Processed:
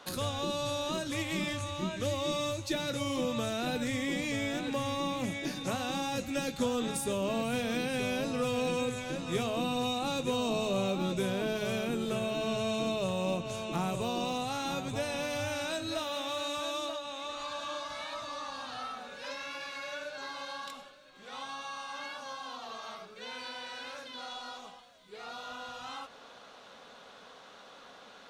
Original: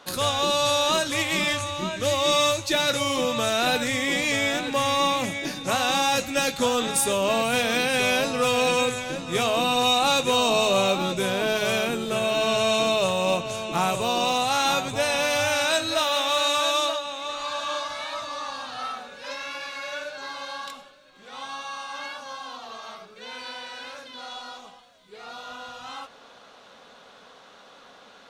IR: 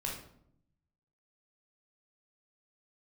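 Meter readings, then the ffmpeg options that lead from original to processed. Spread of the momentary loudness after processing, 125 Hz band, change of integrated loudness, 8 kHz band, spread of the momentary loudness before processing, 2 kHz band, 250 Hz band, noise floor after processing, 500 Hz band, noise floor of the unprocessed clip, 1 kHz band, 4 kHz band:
13 LU, −2.5 dB, −11.0 dB, −12.5 dB, 17 LU, −12.0 dB, −3.5 dB, −53 dBFS, −9.0 dB, −51 dBFS, −11.5 dB, −12.5 dB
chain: -filter_complex "[0:a]acrossover=split=400[link_01][link_02];[link_02]acompressor=threshold=-37dB:ratio=2.5[link_03];[link_01][link_03]amix=inputs=2:normalize=0,volume=-2.5dB"

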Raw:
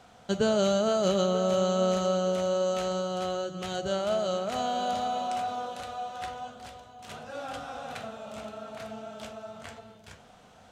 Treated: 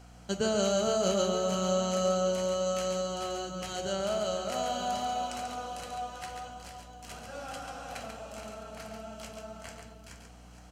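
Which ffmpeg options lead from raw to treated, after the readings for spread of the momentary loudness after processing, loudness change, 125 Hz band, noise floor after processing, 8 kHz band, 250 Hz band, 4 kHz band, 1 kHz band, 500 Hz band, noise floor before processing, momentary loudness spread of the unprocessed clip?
18 LU, −2.5 dB, −3.0 dB, −51 dBFS, +4.0 dB, −3.5 dB, −0.5 dB, −3.0 dB, −3.0 dB, −55 dBFS, 17 LU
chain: -filter_complex "[0:a]highshelf=frequency=3400:gain=9,bandreject=frequency=3600:width=5.2,aeval=exprs='val(0)+0.00447*(sin(2*PI*60*n/s)+sin(2*PI*2*60*n/s)/2+sin(2*PI*3*60*n/s)/3+sin(2*PI*4*60*n/s)/4+sin(2*PI*5*60*n/s)/5)':channel_layout=same,asplit=2[link_01][link_02];[link_02]aecho=0:1:139|470:0.501|0.251[link_03];[link_01][link_03]amix=inputs=2:normalize=0,volume=-4.5dB"

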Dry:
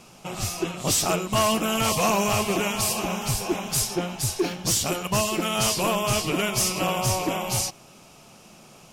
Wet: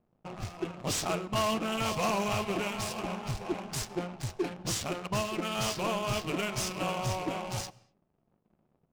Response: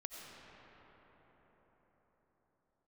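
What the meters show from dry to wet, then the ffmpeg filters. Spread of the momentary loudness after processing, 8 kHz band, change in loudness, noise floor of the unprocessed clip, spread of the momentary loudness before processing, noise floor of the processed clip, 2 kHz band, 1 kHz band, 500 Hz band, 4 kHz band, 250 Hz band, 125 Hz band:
8 LU, −13.0 dB, −8.5 dB, −50 dBFS, 5 LU, −75 dBFS, −7.5 dB, −7.0 dB, −7.0 dB, −9.5 dB, −7.0 dB, −7.0 dB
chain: -filter_complex "[0:a]aeval=exprs='sgn(val(0))*max(abs(val(0))-0.00398,0)':channel_layout=same,adynamicsmooth=sensitivity=6:basefreq=530,asplit=2[link_01][link_02];[1:a]atrim=start_sample=2205,afade=type=out:start_time=0.3:duration=0.01,atrim=end_sample=13671[link_03];[link_02][link_03]afir=irnorm=-1:irlink=0,volume=-14.5dB[link_04];[link_01][link_04]amix=inputs=2:normalize=0,volume=-7.5dB"

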